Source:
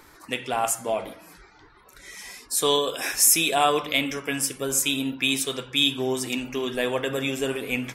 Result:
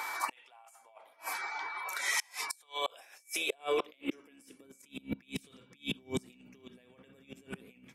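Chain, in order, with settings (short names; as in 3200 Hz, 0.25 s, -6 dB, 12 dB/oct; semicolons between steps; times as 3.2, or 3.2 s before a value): octaver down 2 oct, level +3 dB; dynamic EQ 2800 Hz, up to +4 dB, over -37 dBFS, Q 1.7; negative-ratio compressor -32 dBFS, ratio -1; whine 2300 Hz -45 dBFS; flipped gate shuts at -23 dBFS, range -32 dB; high-pass sweep 850 Hz -> 180 Hz, 2.62–5.05; gain +3 dB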